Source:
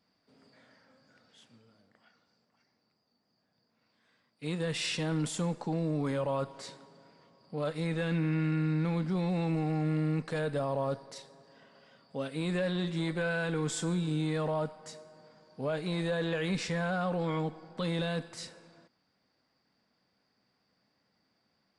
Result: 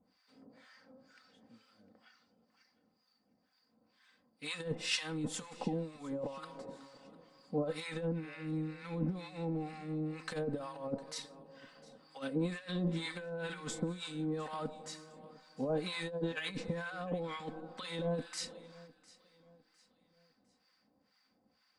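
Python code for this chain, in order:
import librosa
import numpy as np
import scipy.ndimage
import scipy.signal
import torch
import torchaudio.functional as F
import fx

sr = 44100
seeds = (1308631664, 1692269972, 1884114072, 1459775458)

y = x + 0.54 * np.pad(x, (int(3.9 * sr / 1000.0), 0))[:len(x)]
y = fx.over_compress(y, sr, threshold_db=-33.0, ratio=-0.5)
y = fx.harmonic_tremolo(y, sr, hz=2.1, depth_pct=100, crossover_hz=910.0)
y = fx.echo_feedback(y, sr, ms=705, feedback_pct=39, wet_db=-21)
y = F.gain(torch.from_numpy(y), 1.0).numpy()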